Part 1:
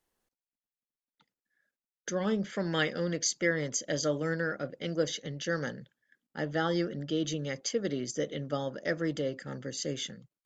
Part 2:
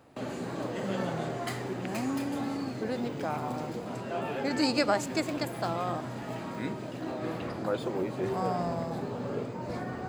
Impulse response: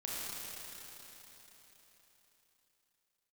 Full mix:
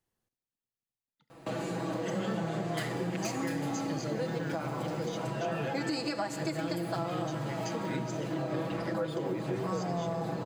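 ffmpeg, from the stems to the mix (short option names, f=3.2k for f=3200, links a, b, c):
-filter_complex "[0:a]equalizer=f=120:t=o:w=1.4:g=12,volume=-6.5dB,asplit=2[a][b];[b]volume=-14.5dB[c];[1:a]aecho=1:1:6.1:0.88,alimiter=limit=-18.5dB:level=0:latency=1:release=444,adelay=1300,volume=2dB,asplit=2[d][e];[e]volume=-12dB[f];[2:a]atrim=start_sample=2205[g];[c][f]amix=inputs=2:normalize=0[h];[h][g]afir=irnorm=-1:irlink=0[i];[a][d][i]amix=inputs=3:normalize=0,acompressor=threshold=-33dB:ratio=2.5"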